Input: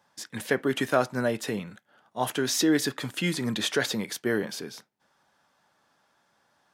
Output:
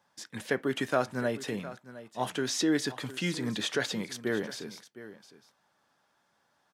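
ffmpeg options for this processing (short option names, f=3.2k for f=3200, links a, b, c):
-filter_complex "[0:a]acrossover=split=9500[a][b];[b]acompressor=threshold=-55dB:ratio=4:attack=1:release=60[c];[a][c]amix=inputs=2:normalize=0,asplit=2[d][e];[e]aecho=0:1:710:0.168[f];[d][f]amix=inputs=2:normalize=0,volume=-4dB"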